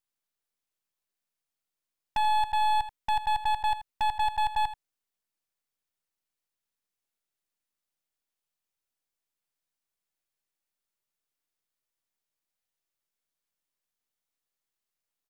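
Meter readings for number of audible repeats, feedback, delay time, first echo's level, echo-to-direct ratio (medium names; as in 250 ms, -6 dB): 1, no regular repeats, 82 ms, -13.5 dB, -13.5 dB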